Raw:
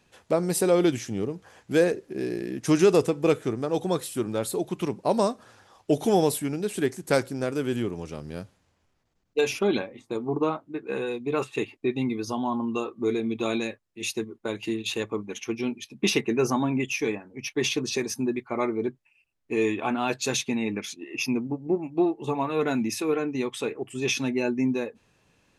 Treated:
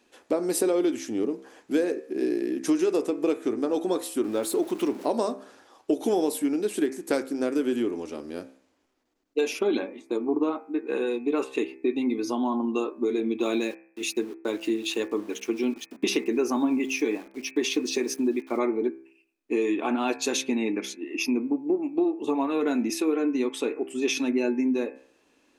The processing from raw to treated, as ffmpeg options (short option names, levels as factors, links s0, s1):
-filter_complex "[0:a]asettb=1/sr,asplit=3[s0][s1][s2];[s0]atrim=end=4.244[s3];[s1]atrim=start=4.24:end=5.06,asetpts=PTS-STARTPTS,afade=t=in:d=0.004:c=qsin,afade=t=out:st=0.816:d=0.004:c=qsin,aeval=exprs='val(0)+0.5*0.0106*sgn(val(0))':c=same[s4];[s2]atrim=start=5.056[s5];[s3][s4]acrossfade=d=0.004:c1=hsin:c2=qsin[s6];[s6][s5]acrossfade=d=0.004:c1=qsin:c2=hsin,asettb=1/sr,asplit=3[s7][s8][s9];[s7]atrim=end=13.414[s10];[s8]atrim=start=13.41:end=18.59,asetpts=PTS-STARTPTS,afade=t=in:d=0.004:c=qsin,afade=t=out:st=5.176:d=0.004:c=qsin,aeval=exprs='val(0)*gte(abs(val(0)),0.00562)':c=same[s11];[s9]atrim=start=18.586[s12];[s10][s11]acrossfade=d=0.004:c1=hsin:c2=qsin[s13];[s13][s12]acrossfade=d=0.004:c1=qsin:c2=hsin,lowshelf=f=200:t=q:w=3:g=-11.5,acompressor=threshold=0.1:ratio=6,bandreject=f=66.13:t=h:w=4,bandreject=f=132.26:t=h:w=4,bandreject=f=198.39:t=h:w=4,bandreject=f=264.52:t=h:w=4,bandreject=f=330.65:t=h:w=4,bandreject=f=396.78:t=h:w=4,bandreject=f=462.91:t=h:w=4,bandreject=f=529.04:t=h:w=4,bandreject=f=595.17:t=h:w=4,bandreject=f=661.3:t=h:w=4,bandreject=f=727.43:t=h:w=4,bandreject=f=793.56:t=h:w=4,bandreject=f=859.69:t=h:w=4,bandreject=f=925.82:t=h:w=4,bandreject=f=991.95:t=h:w=4,bandreject=f=1058.08:t=h:w=4,bandreject=f=1124.21:t=h:w=4,bandreject=f=1190.34:t=h:w=4,bandreject=f=1256.47:t=h:w=4,bandreject=f=1322.6:t=h:w=4,bandreject=f=1388.73:t=h:w=4,bandreject=f=1454.86:t=h:w=4,bandreject=f=1520.99:t=h:w=4,bandreject=f=1587.12:t=h:w=4,bandreject=f=1653.25:t=h:w=4,bandreject=f=1719.38:t=h:w=4,bandreject=f=1785.51:t=h:w=4,bandreject=f=1851.64:t=h:w=4,bandreject=f=1917.77:t=h:w=4,bandreject=f=1983.9:t=h:w=4,bandreject=f=2050.03:t=h:w=4,bandreject=f=2116.16:t=h:w=4,bandreject=f=2182.29:t=h:w=4,bandreject=f=2248.42:t=h:w=4,bandreject=f=2314.55:t=h:w=4,bandreject=f=2380.68:t=h:w=4,bandreject=f=2446.81:t=h:w=4,bandreject=f=2512.94:t=h:w=4,bandreject=f=2579.07:t=h:w=4"